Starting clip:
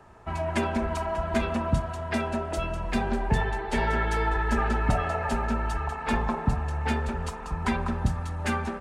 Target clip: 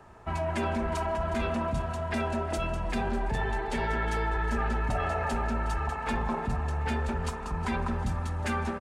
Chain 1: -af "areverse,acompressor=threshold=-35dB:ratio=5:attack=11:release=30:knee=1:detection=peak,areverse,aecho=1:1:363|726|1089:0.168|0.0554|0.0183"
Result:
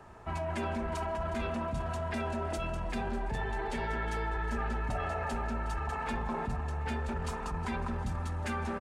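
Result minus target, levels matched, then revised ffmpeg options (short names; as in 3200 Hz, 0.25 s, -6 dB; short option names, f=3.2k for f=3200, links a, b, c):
compressor: peak gain reduction +5 dB
-af "areverse,acompressor=threshold=-29dB:ratio=5:attack=11:release=30:knee=1:detection=peak,areverse,aecho=1:1:363|726|1089:0.168|0.0554|0.0183"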